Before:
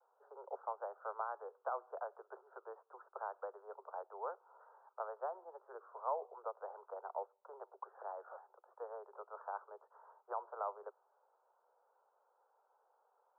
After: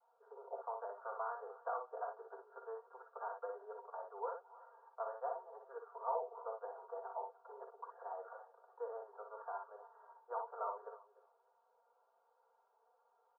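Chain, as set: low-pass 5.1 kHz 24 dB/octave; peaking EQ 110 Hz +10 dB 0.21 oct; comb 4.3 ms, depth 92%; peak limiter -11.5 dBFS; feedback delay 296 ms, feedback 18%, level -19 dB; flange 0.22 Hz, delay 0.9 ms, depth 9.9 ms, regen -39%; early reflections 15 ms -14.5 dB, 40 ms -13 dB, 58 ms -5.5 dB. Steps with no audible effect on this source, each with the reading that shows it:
low-pass 5.1 kHz: input has nothing above 1.7 kHz; peaking EQ 110 Hz: input has nothing below 340 Hz; peak limiter -11.5 dBFS: peak at its input -23.0 dBFS

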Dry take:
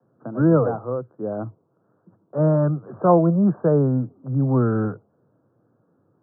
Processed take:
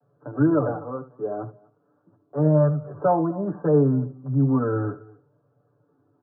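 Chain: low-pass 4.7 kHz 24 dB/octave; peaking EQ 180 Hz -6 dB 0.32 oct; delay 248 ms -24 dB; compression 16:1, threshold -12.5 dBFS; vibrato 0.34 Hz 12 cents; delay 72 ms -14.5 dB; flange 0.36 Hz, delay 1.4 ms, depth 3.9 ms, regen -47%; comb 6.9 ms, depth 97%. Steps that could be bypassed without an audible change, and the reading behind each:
low-pass 4.7 kHz: input has nothing above 1.4 kHz

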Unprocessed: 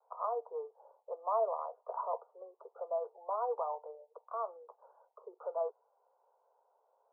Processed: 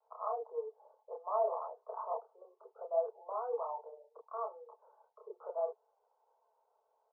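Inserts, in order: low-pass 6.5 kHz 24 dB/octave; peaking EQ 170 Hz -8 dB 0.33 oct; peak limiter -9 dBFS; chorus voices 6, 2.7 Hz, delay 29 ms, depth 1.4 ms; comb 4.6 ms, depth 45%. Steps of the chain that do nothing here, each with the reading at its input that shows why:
low-pass 6.5 kHz: input has nothing above 1.4 kHz; peaking EQ 170 Hz: input has nothing below 360 Hz; peak limiter -9 dBFS: peak at its input -21.0 dBFS

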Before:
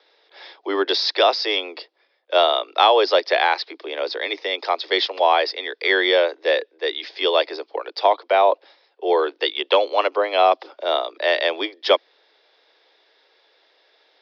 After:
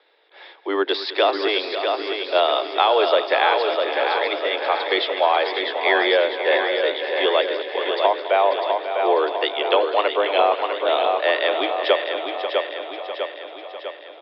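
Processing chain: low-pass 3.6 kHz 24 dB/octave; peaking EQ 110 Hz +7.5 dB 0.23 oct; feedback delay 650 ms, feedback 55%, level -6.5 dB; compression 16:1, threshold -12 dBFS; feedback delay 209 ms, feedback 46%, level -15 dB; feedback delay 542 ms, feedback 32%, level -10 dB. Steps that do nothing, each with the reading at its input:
peaking EQ 110 Hz: input has nothing below 270 Hz

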